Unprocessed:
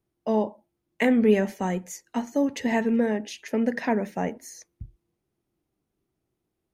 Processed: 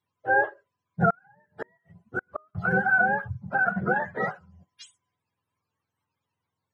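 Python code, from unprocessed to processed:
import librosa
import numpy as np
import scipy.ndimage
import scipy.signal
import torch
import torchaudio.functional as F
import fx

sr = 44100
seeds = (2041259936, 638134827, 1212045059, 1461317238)

y = fx.octave_mirror(x, sr, pivot_hz=590.0)
y = fx.gate_flip(y, sr, shuts_db=-20.0, range_db=-37, at=(1.1, 2.55))
y = fx.dynamic_eq(y, sr, hz=1200.0, q=0.91, threshold_db=-38.0, ratio=4.0, max_db=5)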